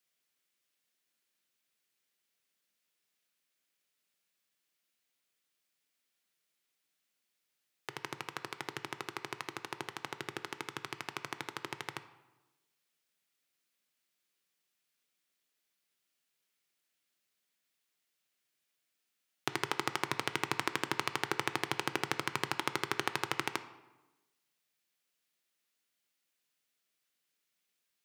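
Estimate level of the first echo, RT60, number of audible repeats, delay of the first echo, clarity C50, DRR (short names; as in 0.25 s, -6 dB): none, 1.1 s, none, none, 13.0 dB, 11.0 dB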